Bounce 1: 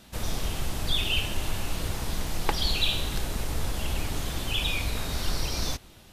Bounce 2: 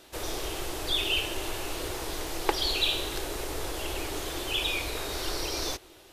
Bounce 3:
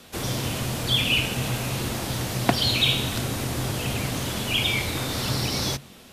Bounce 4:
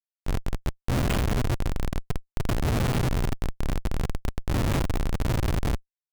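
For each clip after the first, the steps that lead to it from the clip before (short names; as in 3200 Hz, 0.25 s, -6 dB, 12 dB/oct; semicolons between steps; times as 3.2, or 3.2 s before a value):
resonant low shelf 270 Hz -8.5 dB, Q 3
frequency shift -140 Hz; gain +5.5 dB
delta modulation 64 kbps, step -33.5 dBFS; frequency-shifting echo 0.194 s, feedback 38%, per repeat -110 Hz, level -5 dB; Schmitt trigger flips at -18 dBFS; gain +3 dB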